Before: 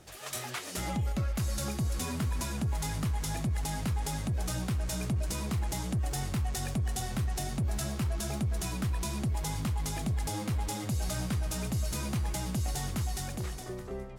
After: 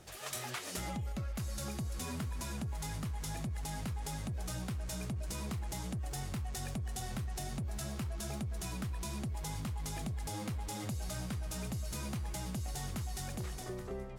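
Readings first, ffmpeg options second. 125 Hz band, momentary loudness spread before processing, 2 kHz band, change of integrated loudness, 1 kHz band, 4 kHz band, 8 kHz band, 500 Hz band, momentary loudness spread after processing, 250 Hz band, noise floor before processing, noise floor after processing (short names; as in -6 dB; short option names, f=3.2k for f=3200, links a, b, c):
-7.0 dB, 2 LU, -5.5 dB, -6.5 dB, -5.5 dB, -5.5 dB, -5.5 dB, -5.5 dB, 1 LU, -6.5 dB, -42 dBFS, -43 dBFS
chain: -af "equalizer=f=290:t=o:w=0.28:g=-2.5,acompressor=threshold=-35dB:ratio=6,volume=-1dB"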